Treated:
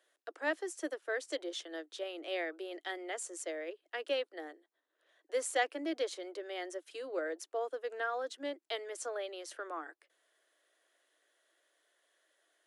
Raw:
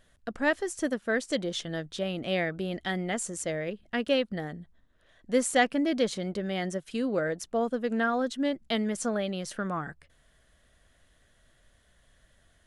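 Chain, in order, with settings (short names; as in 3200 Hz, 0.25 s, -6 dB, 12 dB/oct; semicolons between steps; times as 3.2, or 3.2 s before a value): steep high-pass 300 Hz 96 dB/oct; gain -7.5 dB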